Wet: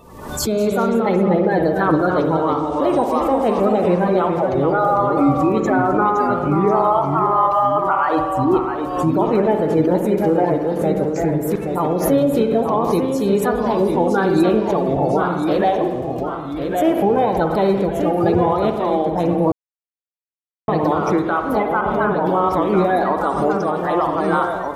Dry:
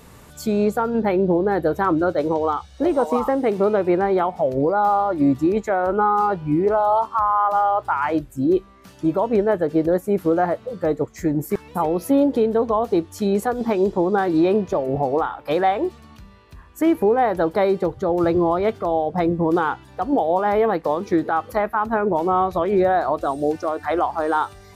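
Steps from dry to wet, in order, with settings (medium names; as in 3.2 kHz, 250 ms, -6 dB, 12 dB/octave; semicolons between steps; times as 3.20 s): coarse spectral quantiser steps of 30 dB; 21.81–22.49 s: phase dispersion highs, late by 96 ms, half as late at 710 Hz; ever faster or slower copies 180 ms, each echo -1 st, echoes 2, each echo -6 dB; spring tank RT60 1.3 s, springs 56 ms, chirp 55 ms, DRR 6 dB; 19.52–20.68 s: mute; swell ahead of each attack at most 61 dB/s; trim +1 dB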